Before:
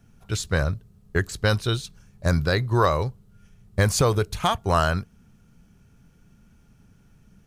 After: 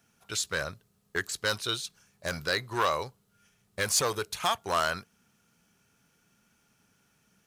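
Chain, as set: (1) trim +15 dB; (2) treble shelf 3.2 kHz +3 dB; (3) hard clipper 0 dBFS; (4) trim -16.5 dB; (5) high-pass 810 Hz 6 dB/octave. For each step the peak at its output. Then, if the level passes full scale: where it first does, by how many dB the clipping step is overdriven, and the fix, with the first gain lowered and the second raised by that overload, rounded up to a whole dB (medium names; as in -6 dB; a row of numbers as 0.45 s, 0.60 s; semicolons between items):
+8.0 dBFS, +8.0 dBFS, 0.0 dBFS, -16.5 dBFS, -12.5 dBFS; step 1, 8.0 dB; step 1 +7 dB, step 4 -8.5 dB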